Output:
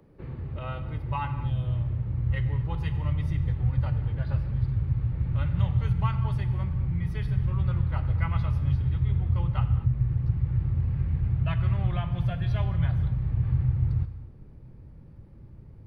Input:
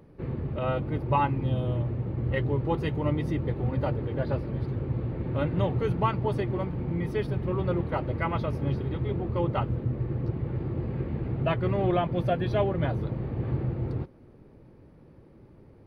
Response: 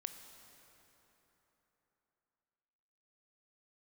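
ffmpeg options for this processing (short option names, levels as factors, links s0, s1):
-filter_complex "[0:a]asubboost=boost=5:cutoff=150,acrossover=split=150|840[s0][s1][s2];[s1]acompressor=threshold=0.00891:ratio=6[s3];[s0][s3][s2]amix=inputs=3:normalize=0[s4];[1:a]atrim=start_sample=2205,afade=t=out:st=0.3:d=0.01,atrim=end_sample=13671[s5];[s4][s5]afir=irnorm=-1:irlink=0"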